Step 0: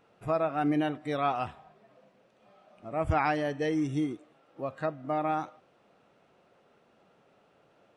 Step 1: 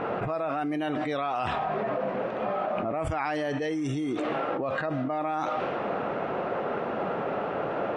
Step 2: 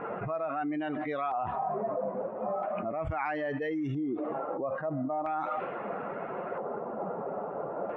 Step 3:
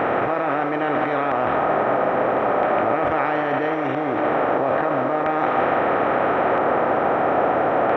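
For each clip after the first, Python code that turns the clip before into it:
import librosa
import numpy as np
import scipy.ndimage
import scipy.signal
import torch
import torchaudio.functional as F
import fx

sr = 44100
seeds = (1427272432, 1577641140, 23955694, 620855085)

y1 = fx.env_lowpass(x, sr, base_hz=1500.0, full_db=-24.0)
y1 = fx.low_shelf(y1, sr, hz=180.0, db=-10.0)
y1 = fx.env_flatten(y1, sr, amount_pct=100)
y1 = F.gain(torch.from_numpy(y1), -4.0).numpy()
y2 = fx.bin_expand(y1, sr, power=1.5)
y2 = fx.filter_lfo_lowpass(y2, sr, shape='square', hz=0.38, low_hz=960.0, high_hz=2000.0, q=1.2)
y2 = F.gain(torch.from_numpy(y2), -1.5).numpy()
y3 = fx.bin_compress(y2, sr, power=0.2)
y3 = fx.highpass(y3, sr, hz=230.0, slope=6)
y3 = fx.echo_wet_bandpass(y3, sr, ms=147, feedback_pct=82, hz=750.0, wet_db=-8.0)
y3 = F.gain(torch.from_numpy(y3), 3.0).numpy()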